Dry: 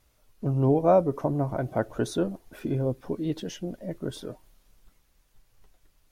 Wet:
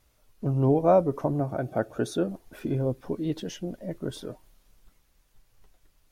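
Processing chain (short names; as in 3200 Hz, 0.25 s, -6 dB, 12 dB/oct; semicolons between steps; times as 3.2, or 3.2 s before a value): 1.4–2.29 notch comb 1000 Hz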